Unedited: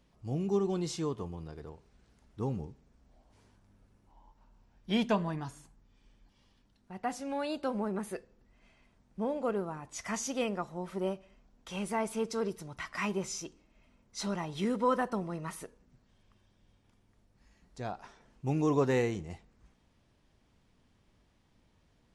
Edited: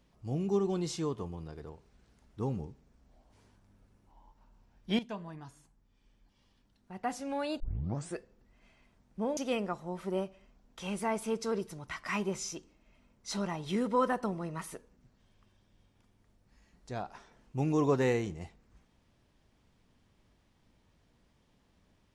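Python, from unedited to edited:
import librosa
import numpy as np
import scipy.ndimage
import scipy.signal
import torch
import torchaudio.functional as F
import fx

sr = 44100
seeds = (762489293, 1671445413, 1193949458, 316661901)

y = fx.edit(x, sr, fx.fade_in_from(start_s=4.99, length_s=2.09, floor_db=-14.0),
    fx.tape_start(start_s=7.6, length_s=0.57),
    fx.cut(start_s=9.37, length_s=0.89), tone=tone)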